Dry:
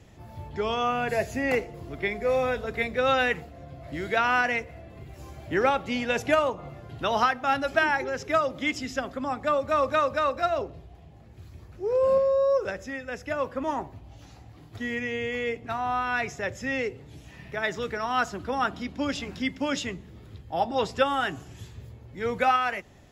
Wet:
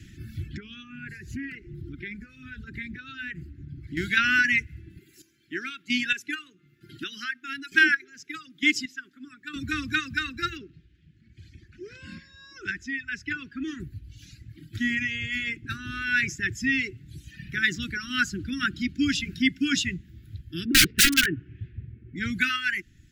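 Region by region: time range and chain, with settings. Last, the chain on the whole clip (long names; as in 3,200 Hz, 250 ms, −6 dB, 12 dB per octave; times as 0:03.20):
0:00.57–0:03.97: high-shelf EQ 2,500 Hz −11 dB + downward compressor 3 to 1, threshold −38 dBFS + highs frequency-modulated by the lows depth 0.12 ms
0:04.99–0:09.56: high-pass filter 290 Hz + square-wave tremolo 1.1 Hz, depth 65%, duty 25%
0:10.57–0:13.80: Bessel low-pass filter 4,600 Hz + low-shelf EQ 260 Hz −9 dB
0:20.65–0:22.16: Chebyshev low-pass filter 2,400 Hz, order 3 + parametric band 490 Hz +14.5 dB 0.86 octaves + wrap-around overflow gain 16.5 dB
whole clip: Chebyshev band-stop filter 340–1,500 Hz, order 4; reverb reduction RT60 1.9 s; level +7.5 dB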